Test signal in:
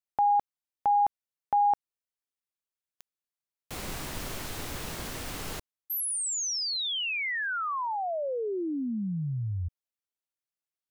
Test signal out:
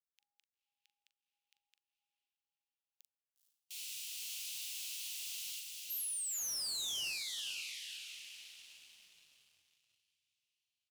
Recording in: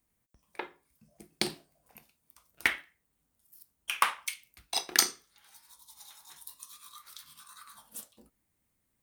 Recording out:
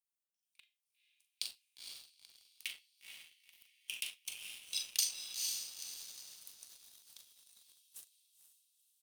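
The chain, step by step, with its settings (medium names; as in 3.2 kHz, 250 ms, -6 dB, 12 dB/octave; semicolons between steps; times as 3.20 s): harmonic-percussive split percussive -7 dB; elliptic high-pass 2.7 kHz, stop band 60 dB; doubling 41 ms -8 dB; on a send: echo that smears into a reverb 480 ms, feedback 49%, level -4 dB; on the sum: waveshaping leveller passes 2; trim -7.5 dB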